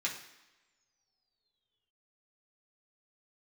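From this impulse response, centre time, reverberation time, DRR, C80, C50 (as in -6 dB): 26 ms, no single decay rate, -4.0 dB, 10.5 dB, 7.5 dB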